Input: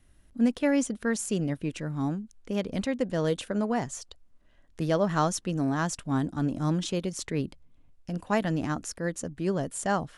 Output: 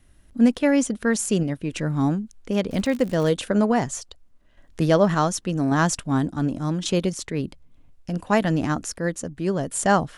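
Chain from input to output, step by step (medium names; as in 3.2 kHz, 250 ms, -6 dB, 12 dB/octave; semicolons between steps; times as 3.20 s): random-step tremolo; 2.69–3.29 s: crackle 120 per s -37 dBFS; trim +8.5 dB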